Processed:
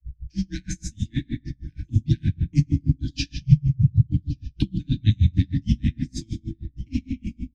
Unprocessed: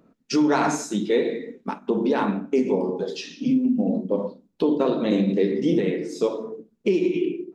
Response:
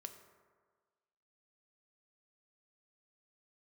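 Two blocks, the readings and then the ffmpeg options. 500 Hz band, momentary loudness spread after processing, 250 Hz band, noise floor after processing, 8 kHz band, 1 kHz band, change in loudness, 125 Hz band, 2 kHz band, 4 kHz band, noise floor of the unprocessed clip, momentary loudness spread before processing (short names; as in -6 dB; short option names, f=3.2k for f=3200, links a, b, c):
under -25 dB, 14 LU, -5.5 dB, -59 dBFS, n/a, under -35 dB, -1.0 dB, +14.5 dB, -9.5 dB, -1.0 dB, -66 dBFS, 9 LU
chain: -filter_complex "[0:a]dynaudnorm=f=300:g=11:m=12.5dB,bass=f=250:g=7,treble=f=4k:g=6[a];[1:a]atrim=start_sample=2205,atrim=end_sample=6615,asetrate=26019,aresample=44100[b];[a][b]afir=irnorm=-1:irlink=0,aeval=exprs='val(0)+0.0447*(sin(2*PI*50*n/s)+sin(2*PI*2*50*n/s)/2+sin(2*PI*3*50*n/s)/3+sin(2*PI*4*50*n/s)/4+sin(2*PI*5*50*n/s)/5)':c=same,lowpass=7.7k,adynamicequalizer=threshold=0.0794:dfrequency=250:dqfactor=1.7:tfrequency=250:tqfactor=1.7:attack=5:release=100:ratio=0.375:range=2.5:mode=boostabove:tftype=bell,afftfilt=real='re*(1-between(b*sr/4096,450,1600))':imag='im*(1-between(b*sr/4096,450,1600))':win_size=4096:overlap=0.75,acrossover=split=230|3000[c][d][e];[d]acompressor=threshold=-23dB:ratio=8[f];[c][f][e]amix=inputs=3:normalize=0,aecho=1:1:1145:0.0794,afreqshift=-110,aeval=exprs='val(0)*pow(10,-36*(0.5-0.5*cos(2*PI*6.4*n/s))/20)':c=same"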